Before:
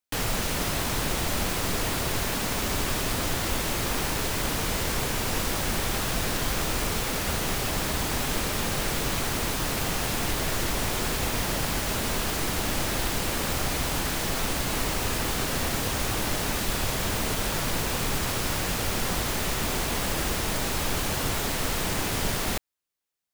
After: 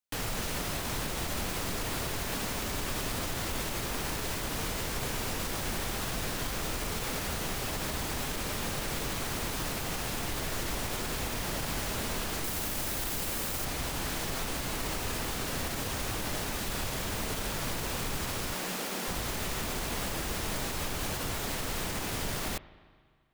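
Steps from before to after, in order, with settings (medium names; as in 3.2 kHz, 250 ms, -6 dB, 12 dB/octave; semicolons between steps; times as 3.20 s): 12.44–13.65 s: treble shelf 8.1 kHz +9 dB; 18.54–19.08 s: Chebyshev high-pass 170 Hz, order 4; peak limiter -18.5 dBFS, peak gain reduction 6 dB; spring tank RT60 1.9 s, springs 37/44 ms, chirp 60 ms, DRR 16.5 dB; trim -5 dB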